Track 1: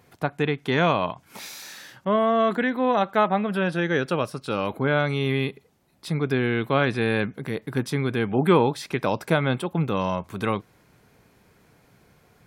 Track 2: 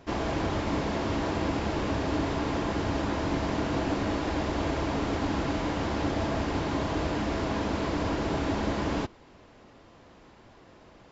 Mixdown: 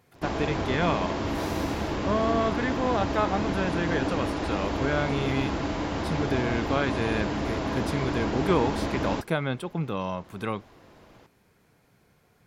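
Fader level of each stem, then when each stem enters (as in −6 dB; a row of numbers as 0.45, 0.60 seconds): −5.5, 0.0 decibels; 0.00, 0.15 seconds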